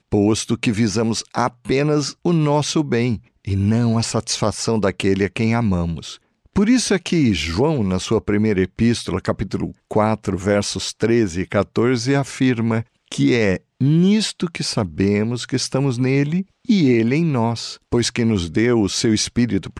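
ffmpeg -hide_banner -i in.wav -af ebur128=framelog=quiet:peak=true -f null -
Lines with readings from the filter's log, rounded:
Integrated loudness:
  I:         -19.2 LUFS
  Threshold: -29.3 LUFS
Loudness range:
  LRA:         1.5 LU
  Threshold: -39.3 LUFS
  LRA low:   -20.1 LUFS
  LRA high:  -18.6 LUFS
True peak:
  Peak:       -3.6 dBFS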